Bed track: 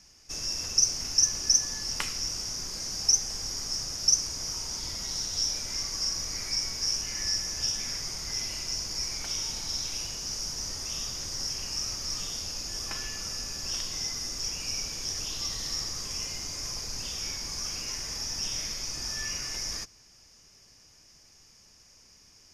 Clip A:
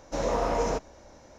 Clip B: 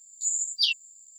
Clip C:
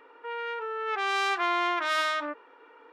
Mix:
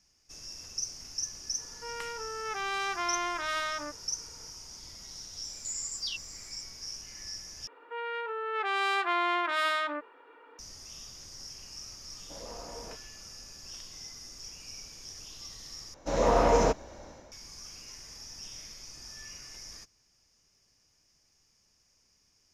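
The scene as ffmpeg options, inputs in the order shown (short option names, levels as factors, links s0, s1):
-filter_complex "[3:a]asplit=2[s0][s1];[1:a]asplit=2[s2][s3];[0:a]volume=0.251[s4];[2:a]acompressor=threshold=0.0224:ratio=6:attack=3.2:release=140:knee=1:detection=peak[s5];[s1]equalizer=f=5900:t=o:w=0.27:g=-9[s6];[s3]dynaudnorm=f=100:g=5:m=2.24[s7];[s4]asplit=3[s8][s9][s10];[s8]atrim=end=7.674[s11];[s6]atrim=end=2.92,asetpts=PTS-STARTPTS,volume=0.841[s12];[s9]atrim=start=10.586:end=15.944[s13];[s7]atrim=end=1.38,asetpts=PTS-STARTPTS,volume=0.708[s14];[s10]atrim=start=17.316[s15];[s0]atrim=end=2.92,asetpts=PTS-STARTPTS,volume=0.531,afade=t=in:d=0.004:c=hsin,afade=t=out:st=2.916:d=0.004:c=hsin,adelay=1580[s16];[s5]atrim=end=1.18,asetpts=PTS-STARTPTS,volume=0.944,afade=t=in:d=0.004:c=hsin,afade=t=out:st=1.176:d=0.004:c=hsin,adelay=5440[s17];[s2]atrim=end=1.38,asetpts=PTS-STARTPTS,volume=0.126,afade=t=in:d=0.004:c=hsin,afade=t=out:st=1.376:d=0.004:c=hsin,adelay=12170[s18];[s11][s12]acrossfade=d=0.004:c1=hsin:c2=hsin[s19];[s19][s13]acrossfade=d=0.004:c1=hsin:c2=hsin[s20];[s20][s14]acrossfade=d=0.004:c1=hsin:c2=hsin[s21];[s21][s15]acrossfade=d=0.004:c1=hsin:c2=hsin[s22];[s22][s16][s17][s18]amix=inputs=4:normalize=0"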